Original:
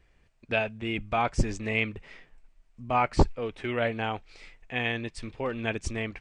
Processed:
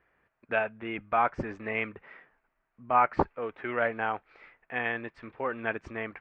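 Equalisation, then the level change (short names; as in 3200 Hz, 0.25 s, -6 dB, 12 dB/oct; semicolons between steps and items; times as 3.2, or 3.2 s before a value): HPF 400 Hz 6 dB/oct; synth low-pass 1500 Hz, resonance Q 1.8; 0.0 dB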